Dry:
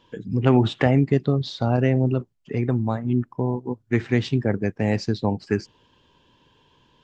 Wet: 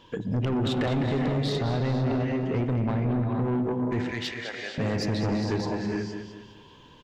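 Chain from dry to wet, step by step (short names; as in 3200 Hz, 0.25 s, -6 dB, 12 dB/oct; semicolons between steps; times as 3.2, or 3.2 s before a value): non-linear reverb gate 0.5 s rising, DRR 6 dB; in parallel at -1 dB: compressor, threshold -33 dBFS, peak gain reduction 19.5 dB; 2.74–3.42 on the sum: LPF 3700 Hz 12 dB/oct; limiter -12 dBFS, peak gain reduction 8 dB; 4.11–4.78 HPF 1000 Hz 12 dB/oct; on a send: feedback echo 0.205 s, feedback 37%, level -9 dB; on the sum: soft clip -21.5 dBFS, distortion -10 dB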